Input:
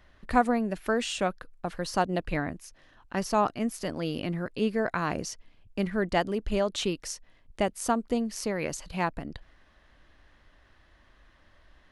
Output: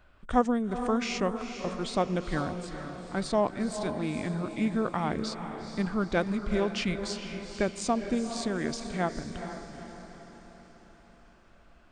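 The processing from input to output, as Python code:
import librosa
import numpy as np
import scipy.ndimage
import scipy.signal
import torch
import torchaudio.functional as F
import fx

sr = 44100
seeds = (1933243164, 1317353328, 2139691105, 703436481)

y = fx.formant_shift(x, sr, semitones=-4)
y = fx.echo_diffused(y, sr, ms=454, feedback_pct=52, wet_db=-8.5)
y = y * 10.0 ** (-1.0 / 20.0)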